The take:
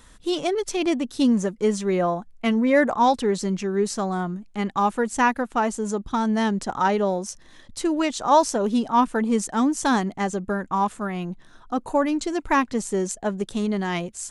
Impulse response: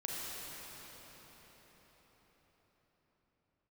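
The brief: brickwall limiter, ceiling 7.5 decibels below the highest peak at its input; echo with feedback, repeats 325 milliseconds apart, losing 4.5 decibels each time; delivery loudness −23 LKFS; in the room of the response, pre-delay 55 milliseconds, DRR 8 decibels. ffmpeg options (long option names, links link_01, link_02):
-filter_complex "[0:a]alimiter=limit=-14dB:level=0:latency=1,aecho=1:1:325|650|975|1300|1625|1950|2275|2600|2925:0.596|0.357|0.214|0.129|0.0772|0.0463|0.0278|0.0167|0.01,asplit=2[link_01][link_02];[1:a]atrim=start_sample=2205,adelay=55[link_03];[link_02][link_03]afir=irnorm=-1:irlink=0,volume=-11dB[link_04];[link_01][link_04]amix=inputs=2:normalize=0,volume=-0.5dB"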